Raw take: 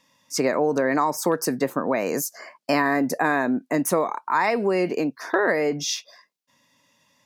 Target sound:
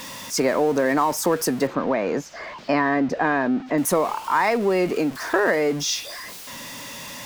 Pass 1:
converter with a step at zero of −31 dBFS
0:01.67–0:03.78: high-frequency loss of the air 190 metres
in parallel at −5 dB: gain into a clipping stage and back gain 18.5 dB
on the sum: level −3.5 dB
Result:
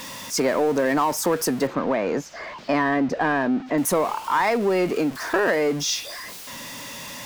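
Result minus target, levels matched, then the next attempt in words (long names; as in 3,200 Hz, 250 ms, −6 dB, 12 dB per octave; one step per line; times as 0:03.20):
gain into a clipping stage and back: distortion +30 dB
converter with a step at zero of −31 dBFS
0:01.67–0:03.78: high-frequency loss of the air 190 metres
in parallel at −5 dB: gain into a clipping stage and back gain 9 dB
on the sum: level −3.5 dB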